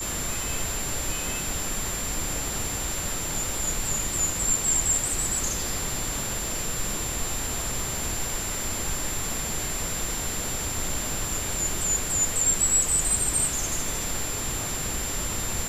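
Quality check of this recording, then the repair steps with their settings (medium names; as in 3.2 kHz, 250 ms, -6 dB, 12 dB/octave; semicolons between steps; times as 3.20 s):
crackle 26 per s -32 dBFS
whine 7.3 kHz -31 dBFS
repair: de-click; band-stop 7.3 kHz, Q 30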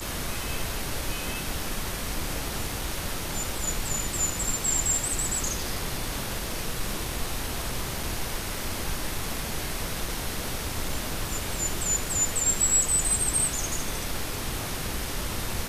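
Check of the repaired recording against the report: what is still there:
nothing left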